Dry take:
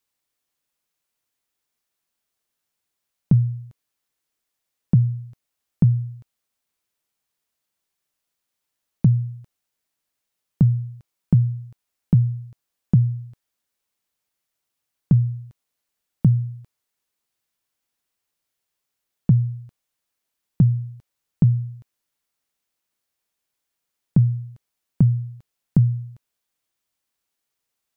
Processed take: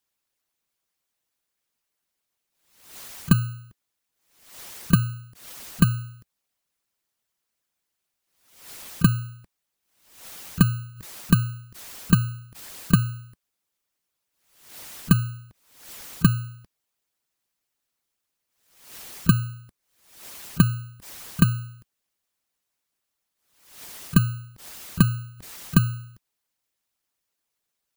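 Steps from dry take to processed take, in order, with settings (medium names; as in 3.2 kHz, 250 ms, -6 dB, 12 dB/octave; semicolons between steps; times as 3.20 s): bit-reversed sample order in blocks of 32 samples; harmonic-percussive split harmonic -10 dB; swell ahead of each attack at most 85 dB/s; trim +3 dB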